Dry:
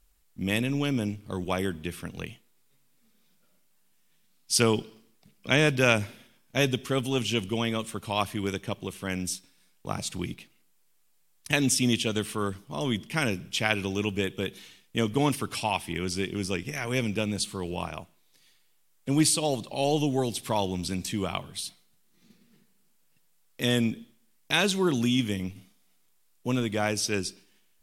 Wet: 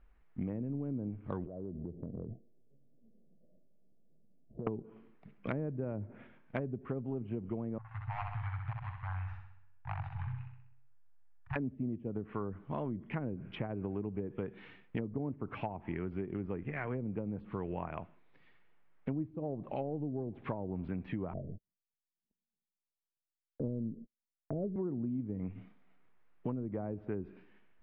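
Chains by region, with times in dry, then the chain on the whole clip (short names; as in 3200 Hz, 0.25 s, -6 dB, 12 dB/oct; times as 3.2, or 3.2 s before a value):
1.46–4.67 steep low-pass 680 Hz 72 dB/oct + compressor 10:1, threshold -40 dBFS
7.78–11.56 median filter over 41 samples + Chebyshev band-stop 130–800 Hz, order 4 + flutter echo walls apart 10.9 m, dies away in 0.71 s
21.33–24.76 Chebyshev low-pass 640 Hz, order 6 + low shelf 61 Hz +10 dB + gate -48 dBFS, range -43 dB
whole clip: treble ducked by the level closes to 470 Hz, closed at -23 dBFS; LPF 2100 Hz 24 dB/oct; compressor 6:1, threshold -38 dBFS; gain +3.5 dB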